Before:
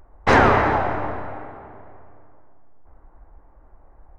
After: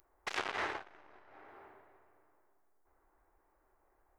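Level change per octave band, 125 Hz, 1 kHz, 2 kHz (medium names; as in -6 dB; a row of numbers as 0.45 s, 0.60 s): -37.0 dB, -23.5 dB, -18.0 dB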